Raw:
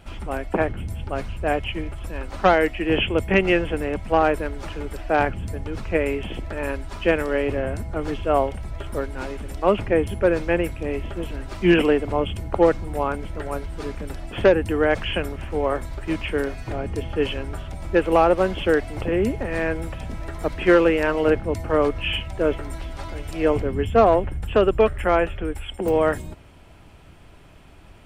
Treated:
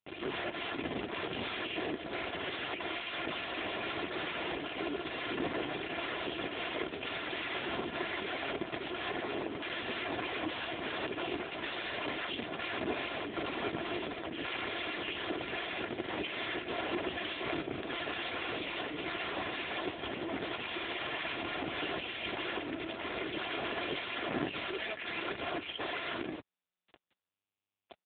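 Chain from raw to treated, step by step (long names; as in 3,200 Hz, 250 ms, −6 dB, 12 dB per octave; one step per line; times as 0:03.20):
brickwall limiter −15 dBFS, peak gain reduction 9.5 dB
rotating-speaker cabinet horn 1.2 Hz
0:09.09–0:09.66: low-pass filter 2,300 Hz 24 dB per octave
0:24.56–0:25.21: spectral tilt +3.5 dB per octave
ambience of single reflections 51 ms −10 dB, 61 ms −4.5 dB, 78 ms −14.5 dB
wrap-around overflow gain 25.5 dB
bit-depth reduction 6 bits, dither none
high-pass filter 160 Hz 12 dB per octave
parametric band 1,100 Hz −4.5 dB 0.73 octaves
comb filter 2.9 ms, depth 49%
AMR narrowband 5.9 kbit/s 8,000 Hz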